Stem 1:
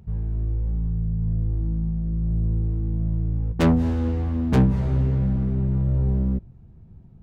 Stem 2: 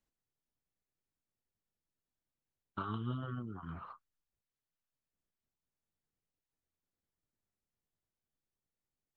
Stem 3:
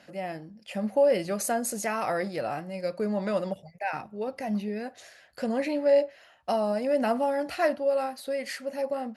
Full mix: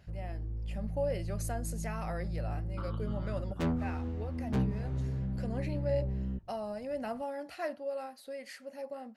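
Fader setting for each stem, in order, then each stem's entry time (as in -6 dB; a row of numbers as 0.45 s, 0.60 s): -13.0 dB, -6.0 dB, -11.5 dB; 0.00 s, 0.00 s, 0.00 s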